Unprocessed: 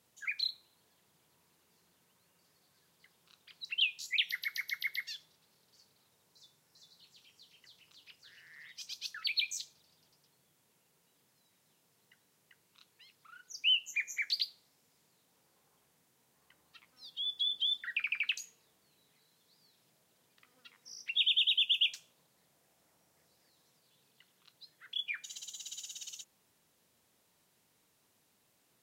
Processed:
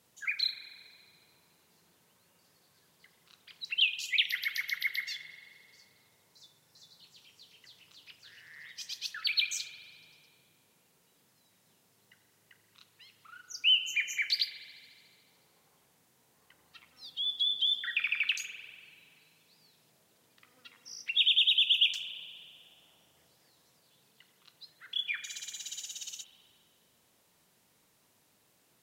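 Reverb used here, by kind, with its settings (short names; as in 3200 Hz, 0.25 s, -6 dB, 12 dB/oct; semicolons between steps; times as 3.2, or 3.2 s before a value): spring tank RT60 2 s, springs 38 ms, chirp 35 ms, DRR 9 dB; gain +3.5 dB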